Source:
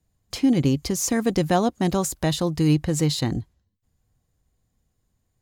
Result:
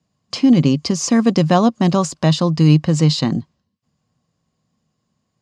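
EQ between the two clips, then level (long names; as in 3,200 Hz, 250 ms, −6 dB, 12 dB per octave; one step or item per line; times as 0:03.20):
loudspeaker in its box 130–7,400 Hz, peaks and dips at 160 Hz +9 dB, 230 Hz +7 dB, 590 Hz +5 dB, 1,100 Hz +9 dB, 2,800 Hz +5 dB, 4,900 Hz +7 dB
+2.5 dB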